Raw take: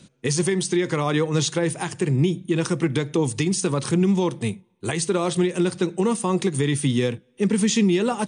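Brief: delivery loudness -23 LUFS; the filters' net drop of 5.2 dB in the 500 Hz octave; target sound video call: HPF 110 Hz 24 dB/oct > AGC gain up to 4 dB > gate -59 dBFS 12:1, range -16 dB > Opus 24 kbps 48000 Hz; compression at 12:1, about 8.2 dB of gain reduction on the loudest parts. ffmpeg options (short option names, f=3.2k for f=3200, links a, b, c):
-af "equalizer=f=500:t=o:g=-7.5,acompressor=threshold=-25dB:ratio=12,highpass=f=110:w=0.5412,highpass=f=110:w=1.3066,dynaudnorm=m=4dB,agate=range=-16dB:threshold=-59dB:ratio=12,volume=8dB" -ar 48000 -c:a libopus -b:a 24k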